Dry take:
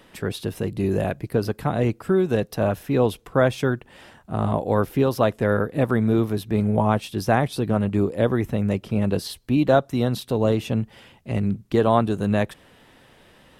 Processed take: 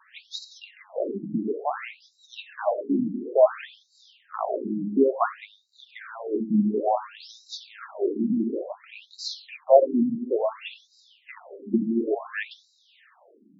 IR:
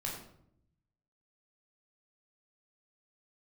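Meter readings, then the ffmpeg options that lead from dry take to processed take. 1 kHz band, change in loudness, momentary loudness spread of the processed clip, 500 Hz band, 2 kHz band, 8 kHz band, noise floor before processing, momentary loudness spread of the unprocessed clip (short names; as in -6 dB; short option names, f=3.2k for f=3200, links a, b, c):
-3.5 dB, -3.0 dB, 21 LU, -3.0 dB, -7.0 dB, n/a, -54 dBFS, 7 LU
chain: -filter_complex "[0:a]flanger=delay=4.4:depth=1.2:regen=70:speed=1.8:shape=sinusoidal,asplit=2[a][b];[1:a]atrim=start_sample=2205,asetrate=26019,aresample=44100[c];[b][c]afir=irnorm=-1:irlink=0,volume=-9.5dB[d];[a][d]amix=inputs=2:normalize=0,afftfilt=real='re*between(b*sr/1024,230*pow(5400/230,0.5+0.5*sin(2*PI*0.57*pts/sr))/1.41,230*pow(5400/230,0.5+0.5*sin(2*PI*0.57*pts/sr))*1.41)':imag='im*between(b*sr/1024,230*pow(5400/230,0.5+0.5*sin(2*PI*0.57*pts/sr))/1.41,230*pow(5400/230,0.5+0.5*sin(2*PI*0.57*pts/sr))*1.41)':win_size=1024:overlap=0.75,volume=4dB"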